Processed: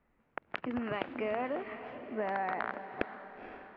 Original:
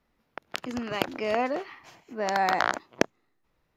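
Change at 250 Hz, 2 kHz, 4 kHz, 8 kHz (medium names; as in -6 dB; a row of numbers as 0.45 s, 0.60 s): -5.0 dB, -8.0 dB, -14.5 dB, under -35 dB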